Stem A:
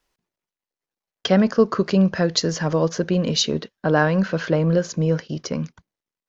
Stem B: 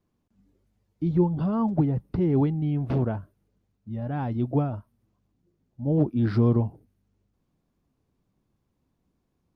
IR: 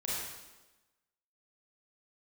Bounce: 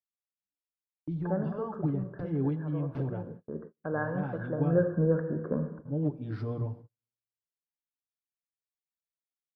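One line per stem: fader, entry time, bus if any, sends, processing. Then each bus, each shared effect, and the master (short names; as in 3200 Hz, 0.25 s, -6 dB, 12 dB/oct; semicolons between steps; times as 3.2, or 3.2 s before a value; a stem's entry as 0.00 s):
1.2 s -10.5 dB -> 1.51 s -22 dB -> 3.34 s -22 dB -> 3.56 s -15 dB -> 4.58 s -15 dB -> 4.8 s -5.5 dB, 0.00 s, send -8.5 dB, rippled Chebyshev low-pass 1700 Hz, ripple 3 dB
-12.0 dB, 0.05 s, send -17.5 dB, high shelf 3100 Hz -5 dB; notches 60/120/180/240 Hz; comb 6.9 ms, depth 74%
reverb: on, RT60 1.1 s, pre-delay 27 ms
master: gate -44 dBFS, range -36 dB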